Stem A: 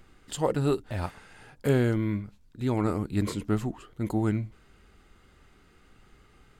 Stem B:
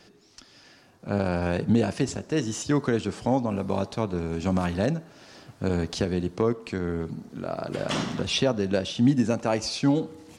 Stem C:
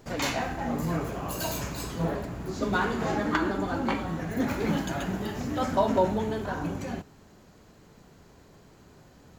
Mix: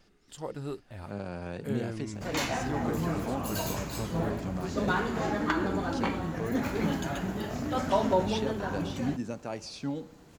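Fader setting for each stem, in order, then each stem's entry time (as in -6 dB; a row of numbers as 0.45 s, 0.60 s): -11.5 dB, -12.0 dB, -2.0 dB; 0.00 s, 0.00 s, 2.15 s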